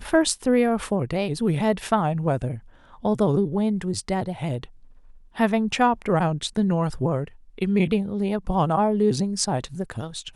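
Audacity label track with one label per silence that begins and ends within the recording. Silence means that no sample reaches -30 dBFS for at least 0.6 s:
4.640000	5.380000	silence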